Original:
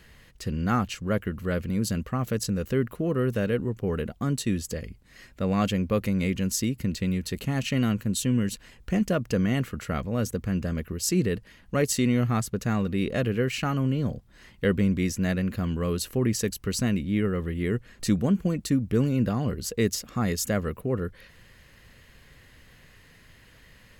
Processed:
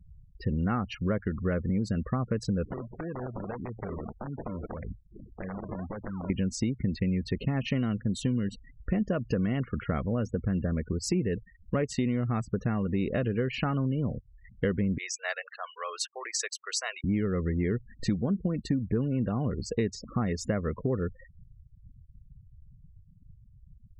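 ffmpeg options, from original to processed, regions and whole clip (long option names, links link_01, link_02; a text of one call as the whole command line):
ffmpeg -i in.wav -filter_complex "[0:a]asettb=1/sr,asplit=3[link_01][link_02][link_03];[link_01]atrim=end=2.644[link_04];[link_02]atrim=start=2.64:end=6.3,asetpts=PTS-STARTPTS,afade=type=in:duration=0.004:curve=qsin,afade=type=out:start_time=3.656:duration=0.004:curve=qsin,acrusher=samples=39:mix=1:aa=0.000001:lfo=1:lforange=39:lforate=1.7,acompressor=threshold=-35dB:ratio=20:attack=3.2:release=140:knee=1:detection=peak,aeval=exprs='(mod(39.8*val(0)+1,2)-1)/39.8':channel_layout=same[link_05];[link_03]atrim=start=6.296[link_06];[link_04][link_05]acrossfade=duration=0.004:curve1=hsin:curve2=qsin[link_07];[link_07][link_06]acrossfade=duration=0.004:curve1=qsin:curve2=hsin,asettb=1/sr,asplit=3[link_08][link_09][link_10];[link_08]atrim=end=14.984[link_11];[link_09]atrim=start=14.98:end=17.04,asetpts=PTS-STARTPTS,afade=type=in:duration=0.004:curve=qsin,afade=type=out:start_time=2.056:duration=0.004:curve=qsin,highpass=frequency=730:width=0.5412,highpass=frequency=730:width=1.3066,equalizer=frequency=6600:width_type=o:width=1.2:gain=8.5[link_12];[link_10]atrim=start=17.036[link_13];[link_11][link_12]acrossfade=duration=0.004:curve1=hsin:curve2=qsin[link_14];[link_14][link_13]acrossfade=duration=0.004:curve1=qsin:curve2=hsin,aemphasis=mode=reproduction:type=75fm,afftfilt=real='re*gte(hypot(re,im),0.0112)':imag='im*gte(hypot(re,im),0.0112)':win_size=1024:overlap=0.75,acompressor=threshold=-28dB:ratio=6,volume=3.5dB" out.wav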